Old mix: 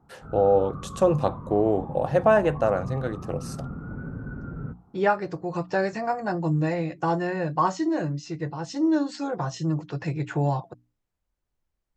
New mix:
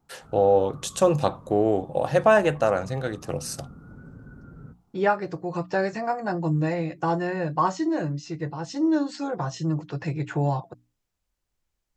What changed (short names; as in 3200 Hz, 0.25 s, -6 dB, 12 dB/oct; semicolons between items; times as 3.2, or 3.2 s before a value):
first voice: add high shelf 2200 Hz +10.5 dB; background -9.5 dB